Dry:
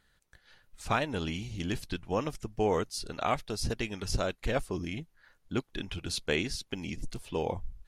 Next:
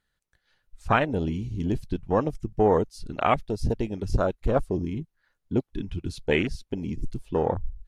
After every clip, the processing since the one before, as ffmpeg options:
ffmpeg -i in.wav -af "afwtdn=0.02,volume=7.5dB" out.wav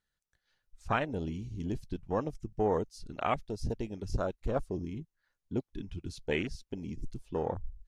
ffmpeg -i in.wav -af "equalizer=frequency=6100:width=1.5:gain=5,volume=-8.5dB" out.wav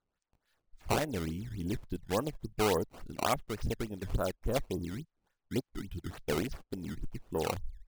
ffmpeg -i in.wav -af "acrusher=samples=15:mix=1:aa=0.000001:lfo=1:lforange=24:lforate=3.5" out.wav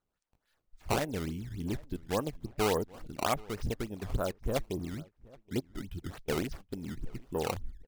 ffmpeg -i in.wav -filter_complex "[0:a]asplit=2[link_01][link_02];[link_02]adelay=775,lowpass=frequency=2600:poles=1,volume=-23dB,asplit=2[link_03][link_04];[link_04]adelay=775,lowpass=frequency=2600:poles=1,volume=0.35[link_05];[link_01][link_03][link_05]amix=inputs=3:normalize=0" out.wav

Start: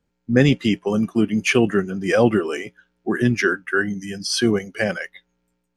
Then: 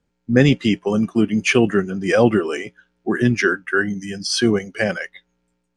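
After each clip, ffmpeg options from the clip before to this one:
ffmpeg -i in.wav -af "lowpass=frequency=9700:width=0.5412,lowpass=frequency=9700:width=1.3066,volume=1.5dB" out.wav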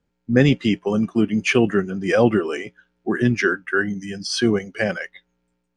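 ffmpeg -i in.wav -af "highshelf=frequency=8300:gain=-8.5,volume=-1.5dB" out.wav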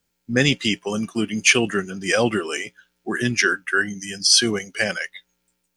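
ffmpeg -i in.wav -af "crystalizer=i=9:c=0,volume=-5.5dB" out.wav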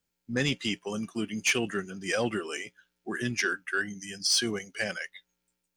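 ffmpeg -i in.wav -af "asoftclip=type=tanh:threshold=-7.5dB,volume=-8.5dB" out.wav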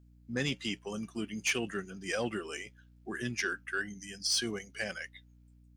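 ffmpeg -i in.wav -af "aeval=exprs='val(0)+0.00224*(sin(2*PI*60*n/s)+sin(2*PI*2*60*n/s)/2+sin(2*PI*3*60*n/s)/3+sin(2*PI*4*60*n/s)/4+sin(2*PI*5*60*n/s)/5)':channel_layout=same,volume=-5dB" out.wav

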